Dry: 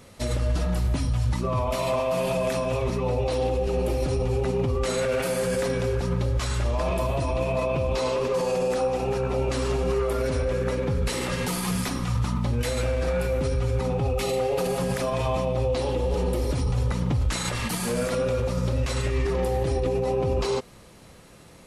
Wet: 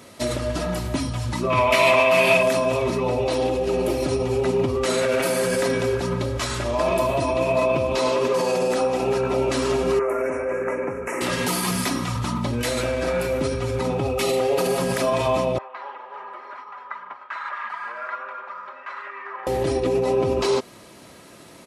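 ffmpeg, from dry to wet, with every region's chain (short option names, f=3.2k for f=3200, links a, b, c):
-filter_complex "[0:a]asettb=1/sr,asplit=3[a][b][c];[a]atrim=end=1.504[d];[b]atrim=start=1.5:end=2.43,asetpts=PTS-STARTPTS,afade=t=in:d=0.004:c=qsin,afade=t=out:st=0.926:d=0.004:c=qsin,equalizer=f=2.3k:t=o:w=1.1:g=14,asplit=2[e][f];[f]adelay=18,volume=-11.5dB[g];[e][g]amix=inputs=2:normalize=0,atrim=end_sample=41013[h];[c]atrim=start=2.426[i];[d][h]acrossfade=d=0.004:c1=hsin:c2=qsin[j];[j][i]acrossfade=d=0.004:c1=qsin:c2=hsin,asettb=1/sr,asplit=3[k][l][m];[k]atrim=end=9.994[n];[l]atrim=start=9.99:end=11.21,asetpts=PTS-STARTPTS,afade=t=in:d=0.004:c=qsin,afade=t=out:st=1.216:d=0.004:c=qsin,asuperstop=centerf=3900:order=8:qfactor=1.1,bass=f=250:g=-14,treble=f=4k:g=-10[o];[m]atrim=start=11.206[p];[n][o]acrossfade=d=0.004:c1=hsin:c2=qsin[q];[q][p]acrossfade=d=0.004:c1=qsin:c2=hsin,asettb=1/sr,asplit=3[r][s][t];[r]atrim=end=15.584[u];[s]atrim=start=15.58:end=19.47,asetpts=PTS-STARTPTS,afade=t=in:d=0.004:c=qsin,afade=t=out:st=3.886:d=0.004:c=qsin,asuperpass=centerf=1300:order=4:qfactor=1.5,aecho=1:1:5:0.47,atrim=end_sample=171549[v];[t]atrim=start=19.466[w];[u][v]acrossfade=d=0.004:c1=hsin:c2=qsin[x];[x][w]acrossfade=d=0.004:c1=qsin:c2=hsin,highpass=140,aecho=1:1:3.1:0.34,volume=5dB"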